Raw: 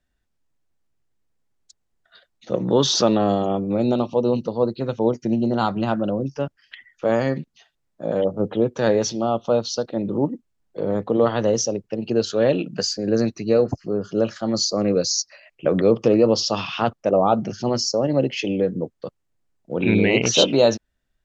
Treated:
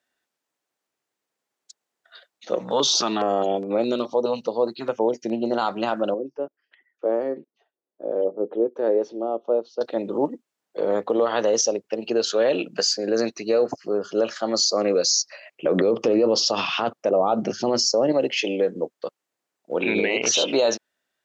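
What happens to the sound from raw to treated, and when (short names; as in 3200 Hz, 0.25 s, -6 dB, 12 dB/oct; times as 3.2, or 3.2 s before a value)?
2.59–5.46 stepped notch 4.8 Hz 350–6000 Hz
6.14–9.81 band-pass 370 Hz, Q 1.8
15.13–18.12 low shelf 440 Hz +9.5 dB
whole clip: HPF 420 Hz 12 dB/oct; limiter -15 dBFS; gain +4 dB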